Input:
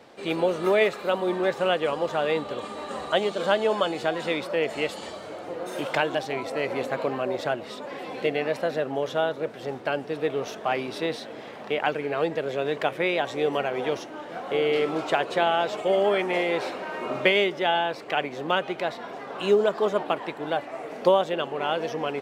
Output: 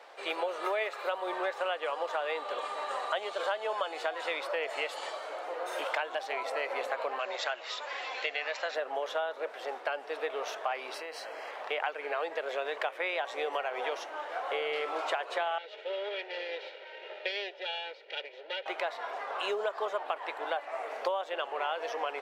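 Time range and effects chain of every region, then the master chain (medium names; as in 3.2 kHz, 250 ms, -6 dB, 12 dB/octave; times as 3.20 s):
7.19–8.75 s: brick-wall FIR low-pass 7.7 kHz + tilt shelf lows -7.5 dB, about 1.3 kHz
10.94–11.51 s: treble shelf 6.2 kHz +6.5 dB + compression, threshold -33 dBFS + Butterworth band-stop 3.6 kHz, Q 4.5
15.58–18.66 s: comb filter that takes the minimum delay 2.1 ms + four-pole ladder low-pass 4.3 kHz, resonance 35% + static phaser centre 460 Hz, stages 4
whole clip: Bessel high-pass 840 Hz, order 4; treble shelf 2.5 kHz -10 dB; compression 5:1, threshold -35 dBFS; trim +5.5 dB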